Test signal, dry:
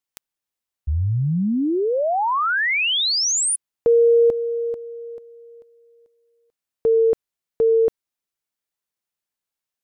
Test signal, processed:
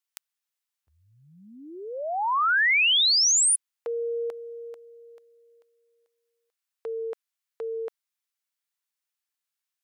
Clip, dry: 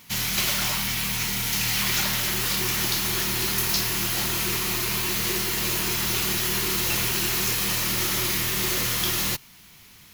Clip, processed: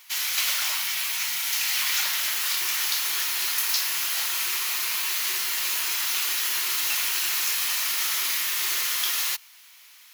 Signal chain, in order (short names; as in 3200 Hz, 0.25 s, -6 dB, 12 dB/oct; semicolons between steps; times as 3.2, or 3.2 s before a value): HPF 1100 Hz 12 dB/oct